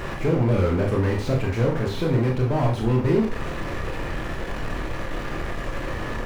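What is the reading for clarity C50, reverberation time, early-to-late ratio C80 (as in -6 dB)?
7.5 dB, 0.40 s, 12.5 dB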